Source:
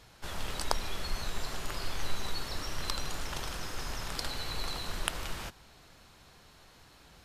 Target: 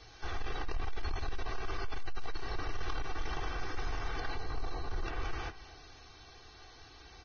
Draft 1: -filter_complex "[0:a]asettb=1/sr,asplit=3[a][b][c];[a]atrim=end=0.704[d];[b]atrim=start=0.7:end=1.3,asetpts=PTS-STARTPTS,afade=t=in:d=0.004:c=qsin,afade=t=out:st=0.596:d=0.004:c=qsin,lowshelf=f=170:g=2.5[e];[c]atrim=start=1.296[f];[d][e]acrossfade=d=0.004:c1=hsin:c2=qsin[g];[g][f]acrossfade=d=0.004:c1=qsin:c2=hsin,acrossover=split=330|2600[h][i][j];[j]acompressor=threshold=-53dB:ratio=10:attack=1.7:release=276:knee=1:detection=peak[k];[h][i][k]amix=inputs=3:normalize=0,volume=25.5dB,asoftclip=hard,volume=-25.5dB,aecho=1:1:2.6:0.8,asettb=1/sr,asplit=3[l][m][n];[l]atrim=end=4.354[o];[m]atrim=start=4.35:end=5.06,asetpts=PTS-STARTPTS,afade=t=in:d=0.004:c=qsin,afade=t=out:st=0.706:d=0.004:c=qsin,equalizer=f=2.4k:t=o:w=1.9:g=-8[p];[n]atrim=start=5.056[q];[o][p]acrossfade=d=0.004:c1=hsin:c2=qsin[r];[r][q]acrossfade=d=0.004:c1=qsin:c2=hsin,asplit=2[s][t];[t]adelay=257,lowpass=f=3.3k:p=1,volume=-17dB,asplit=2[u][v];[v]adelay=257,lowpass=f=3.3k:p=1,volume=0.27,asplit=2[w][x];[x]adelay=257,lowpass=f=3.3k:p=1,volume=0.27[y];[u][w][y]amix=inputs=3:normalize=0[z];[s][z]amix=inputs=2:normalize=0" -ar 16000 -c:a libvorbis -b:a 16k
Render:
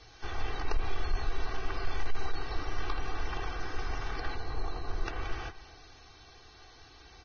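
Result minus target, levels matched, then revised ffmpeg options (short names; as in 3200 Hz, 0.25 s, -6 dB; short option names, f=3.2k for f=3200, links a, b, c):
overloaded stage: distortion -8 dB
-filter_complex "[0:a]asettb=1/sr,asplit=3[a][b][c];[a]atrim=end=0.704[d];[b]atrim=start=0.7:end=1.3,asetpts=PTS-STARTPTS,afade=t=in:d=0.004:c=qsin,afade=t=out:st=0.596:d=0.004:c=qsin,lowshelf=f=170:g=2.5[e];[c]atrim=start=1.296[f];[d][e]acrossfade=d=0.004:c1=hsin:c2=qsin[g];[g][f]acrossfade=d=0.004:c1=qsin:c2=hsin,acrossover=split=330|2600[h][i][j];[j]acompressor=threshold=-53dB:ratio=10:attack=1.7:release=276:knee=1:detection=peak[k];[h][i][k]amix=inputs=3:normalize=0,volume=33.5dB,asoftclip=hard,volume=-33.5dB,aecho=1:1:2.6:0.8,asettb=1/sr,asplit=3[l][m][n];[l]atrim=end=4.354[o];[m]atrim=start=4.35:end=5.06,asetpts=PTS-STARTPTS,afade=t=in:d=0.004:c=qsin,afade=t=out:st=0.706:d=0.004:c=qsin,equalizer=f=2.4k:t=o:w=1.9:g=-8[p];[n]atrim=start=5.056[q];[o][p]acrossfade=d=0.004:c1=hsin:c2=qsin[r];[r][q]acrossfade=d=0.004:c1=qsin:c2=hsin,asplit=2[s][t];[t]adelay=257,lowpass=f=3.3k:p=1,volume=-17dB,asplit=2[u][v];[v]adelay=257,lowpass=f=3.3k:p=1,volume=0.27,asplit=2[w][x];[x]adelay=257,lowpass=f=3.3k:p=1,volume=0.27[y];[u][w][y]amix=inputs=3:normalize=0[z];[s][z]amix=inputs=2:normalize=0" -ar 16000 -c:a libvorbis -b:a 16k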